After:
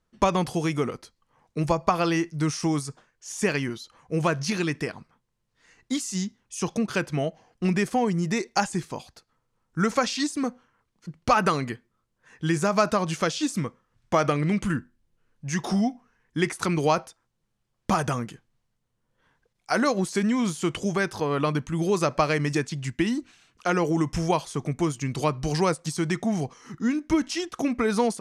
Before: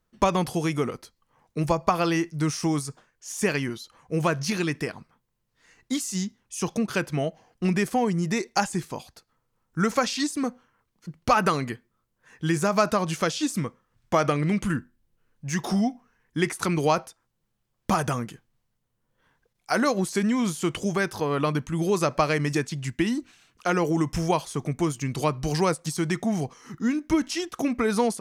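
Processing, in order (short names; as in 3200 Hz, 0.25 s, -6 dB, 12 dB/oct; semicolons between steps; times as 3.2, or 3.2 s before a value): LPF 9800 Hz 12 dB/oct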